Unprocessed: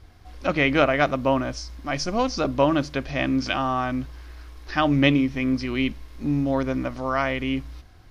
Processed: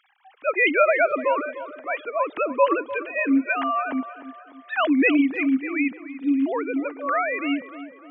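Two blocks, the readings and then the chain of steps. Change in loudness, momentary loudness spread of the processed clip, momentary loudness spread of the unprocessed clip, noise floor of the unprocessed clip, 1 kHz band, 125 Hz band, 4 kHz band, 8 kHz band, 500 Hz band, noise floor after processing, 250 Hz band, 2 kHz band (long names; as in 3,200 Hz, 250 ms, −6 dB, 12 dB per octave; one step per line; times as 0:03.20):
+1.0 dB, 12 LU, 12 LU, −48 dBFS, +1.0 dB, below −30 dB, −8.0 dB, can't be measured, +1.0 dB, −50 dBFS, +0.5 dB, +3.0 dB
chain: three sine waves on the formant tracks
spectral tilt +2.5 dB per octave
tape delay 298 ms, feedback 55%, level −12.5 dB, low-pass 1,800 Hz
level +3 dB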